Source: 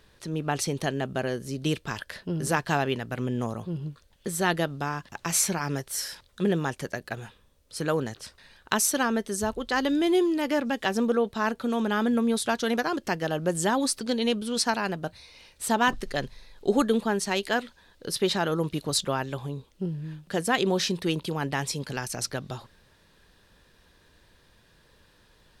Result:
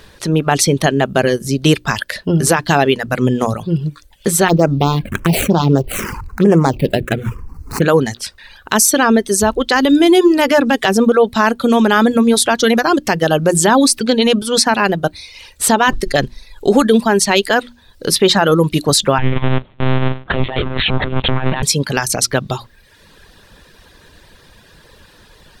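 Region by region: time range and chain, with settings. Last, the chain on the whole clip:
4.48–7.82 median filter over 25 samples + envelope phaser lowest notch 540 Hz, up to 3900 Hz, full sweep at -22 dBFS + fast leveller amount 50%
19.18–21.63 half-waves squared off + negative-ratio compressor -29 dBFS + monotone LPC vocoder at 8 kHz 130 Hz
whole clip: notches 60/120/180/240/300/360 Hz; reverb removal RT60 0.77 s; maximiser +18 dB; gain -1 dB

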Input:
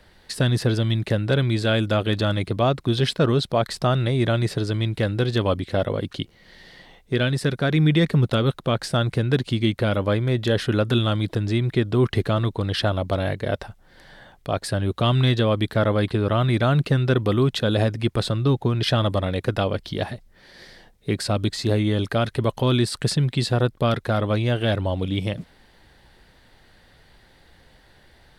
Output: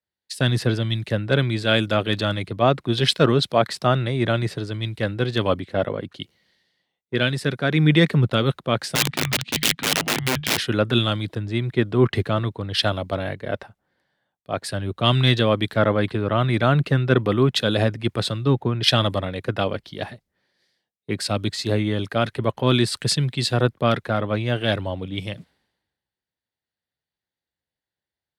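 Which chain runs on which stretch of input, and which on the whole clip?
8.95–10.57 LPF 3600 Hz + frequency shift -260 Hz + wrapped overs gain 16.5 dB
whole clip: HPF 95 Hz; dynamic EQ 2300 Hz, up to +4 dB, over -38 dBFS, Q 0.84; three-band expander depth 100%

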